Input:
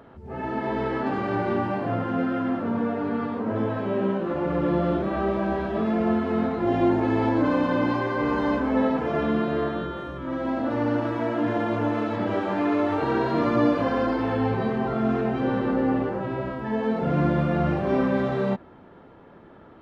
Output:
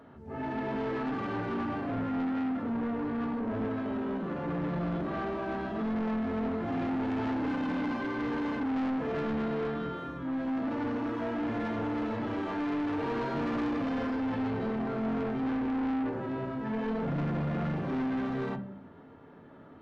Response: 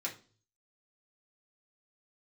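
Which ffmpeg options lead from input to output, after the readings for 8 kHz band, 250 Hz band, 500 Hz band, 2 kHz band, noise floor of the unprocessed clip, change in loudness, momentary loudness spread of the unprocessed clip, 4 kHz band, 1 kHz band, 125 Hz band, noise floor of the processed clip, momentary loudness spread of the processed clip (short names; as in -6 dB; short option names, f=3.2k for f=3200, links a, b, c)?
n/a, -6.0 dB, -10.0 dB, -7.0 dB, -49 dBFS, -7.5 dB, 6 LU, -6.5 dB, -8.5 dB, -8.0 dB, -51 dBFS, 3 LU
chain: -filter_complex "[0:a]asplit=2[a][b];[1:a]atrim=start_sample=2205,asetrate=35721,aresample=44100,lowshelf=f=380:g=8.5[c];[b][c]afir=irnorm=-1:irlink=0,volume=-4dB[d];[a][d]amix=inputs=2:normalize=0,asoftclip=type=tanh:threshold=-19.5dB,volume=-9dB"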